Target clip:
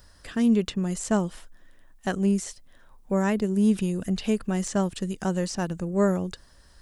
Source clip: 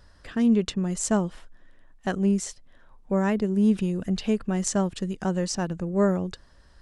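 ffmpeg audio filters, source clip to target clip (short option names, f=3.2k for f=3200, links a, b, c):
-filter_complex "[0:a]acrossover=split=3500[a][b];[b]acompressor=threshold=-43dB:ratio=4:attack=1:release=60[c];[a][c]amix=inputs=2:normalize=0,aemphasis=mode=production:type=50fm"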